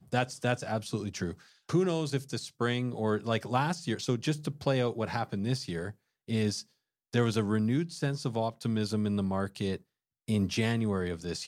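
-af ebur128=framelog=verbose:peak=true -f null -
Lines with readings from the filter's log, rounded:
Integrated loudness:
  I:         -31.5 LUFS
  Threshold: -41.7 LUFS
Loudness range:
  LRA:         1.2 LU
  Threshold: -51.7 LUFS
  LRA low:   -32.3 LUFS
  LRA high:  -31.1 LUFS
True peak:
  Peak:      -14.0 dBFS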